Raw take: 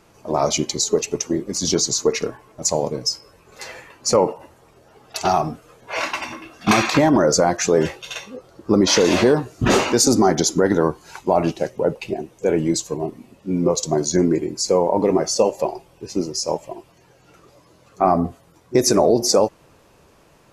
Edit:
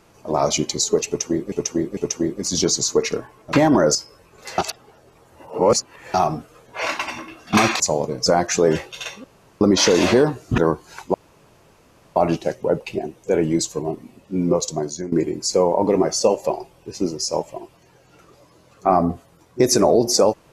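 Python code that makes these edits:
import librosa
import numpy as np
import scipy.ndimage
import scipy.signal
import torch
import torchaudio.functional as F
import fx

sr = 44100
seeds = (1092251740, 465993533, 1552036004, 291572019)

y = fx.edit(x, sr, fx.repeat(start_s=1.07, length_s=0.45, count=3),
    fx.swap(start_s=2.63, length_s=0.46, other_s=6.94, other_length_s=0.42),
    fx.reverse_span(start_s=3.72, length_s=1.56),
    fx.room_tone_fill(start_s=8.34, length_s=0.37),
    fx.cut(start_s=9.68, length_s=1.07),
    fx.insert_room_tone(at_s=11.31, length_s=1.02),
    fx.fade_out_to(start_s=13.66, length_s=0.61, floor_db=-17.5), tone=tone)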